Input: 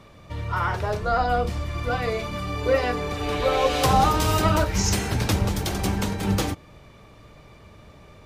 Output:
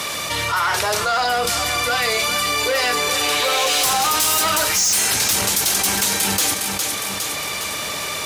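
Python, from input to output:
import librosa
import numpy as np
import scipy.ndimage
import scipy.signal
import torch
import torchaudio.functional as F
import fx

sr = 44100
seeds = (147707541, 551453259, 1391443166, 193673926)

y = fx.tilt_shelf(x, sr, db=-5.0, hz=760.0)
y = 10.0 ** (-17.5 / 20.0) * np.tanh(y / 10.0 ** (-17.5 / 20.0))
y = fx.highpass(y, sr, hz=340.0, slope=6)
y = fx.peak_eq(y, sr, hz=11000.0, db=15.0, octaves=2.2)
y = fx.echo_feedback(y, sr, ms=409, feedback_pct=39, wet_db=-15.0)
y = np.clip(10.0 ** (15.0 / 20.0) * y, -1.0, 1.0) / 10.0 ** (15.0 / 20.0)
y = fx.env_flatten(y, sr, amount_pct=70)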